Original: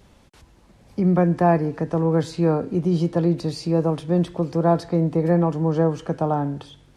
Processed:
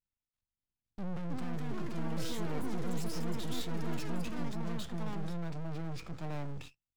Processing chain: gate -39 dBFS, range -41 dB; peaking EQ 570 Hz -13 dB 2.3 oct; peak limiter -25 dBFS, peak gain reduction 10 dB; valve stage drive 36 dB, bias 0.65; half-wave rectifier; formant shift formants -4 st; ever faster or slower copies 607 ms, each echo +6 st, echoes 3; trim +6.5 dB

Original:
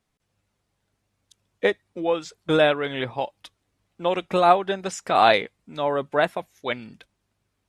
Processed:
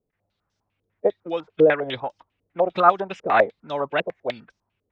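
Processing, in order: time stretch by phase-locked vocoder 0.64×; step-sequenced low-pass 10 Hz 470–5600 Hz; trim -3 dB

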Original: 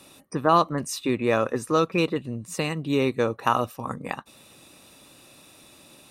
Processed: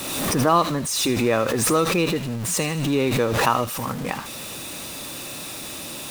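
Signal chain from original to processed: jump at every zero crossing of -30 dBFS; feedback echo behind a high-pass 77 ms, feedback 49%, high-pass 3.6 kHz, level -5 dB; swell ahead of each attack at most 32 dB/s

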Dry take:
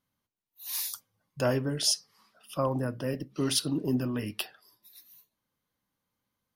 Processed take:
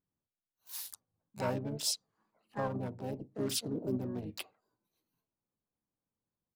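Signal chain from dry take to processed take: local Wiener filter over 25 samples; harmony voices -4 st -9 dB, +7 st -5 dB; trim -8 dB

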